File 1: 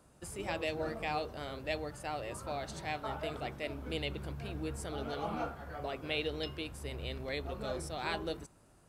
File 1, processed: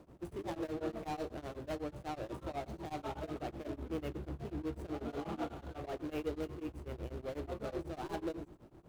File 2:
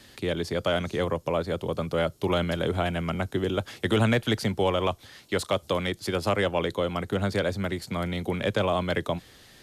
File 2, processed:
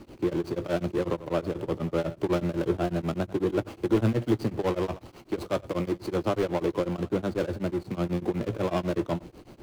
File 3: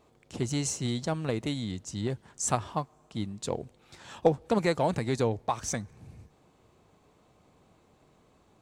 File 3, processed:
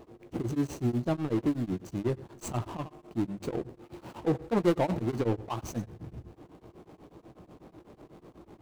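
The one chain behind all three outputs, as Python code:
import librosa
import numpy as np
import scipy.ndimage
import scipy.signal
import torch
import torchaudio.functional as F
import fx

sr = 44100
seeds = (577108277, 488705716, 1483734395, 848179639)

p1 = scipy.ndimage.median_filter(x, 25, mode='constant')
p2 = fx.peak_eq(p1, sr, hz=330.0, db=9.5, octaves=0.32)
p3 = fx.power_curve(p2, sr, exponent=0.7)
p4 = fx.hum_notches(p3, sr, base_hz=50, count=2)
p5 = fx.doubler(p4, sr, ms=17.0, db=-11)
p6 = p5 + fx.echo_single(p5, sr, ms=91, db=-16.5, dry=0)
p7 = p6 * np.abs(np.cos(np.pi * 8.1 * np.arange(len(p6)) / sr))
y = p7 * 10.0 ** (-3.5 / 20.0)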